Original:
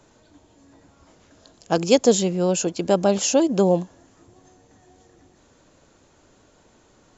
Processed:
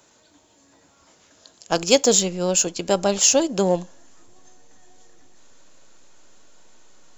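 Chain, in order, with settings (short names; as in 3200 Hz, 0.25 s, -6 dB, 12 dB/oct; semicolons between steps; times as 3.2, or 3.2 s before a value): tilt +2.5 dB/oct; in parallel at -9.5 dB: backlash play -16 dBFS; on the sum: reverb, pre-delay 3 ms, DRR 17.5 dB; gain -1 dB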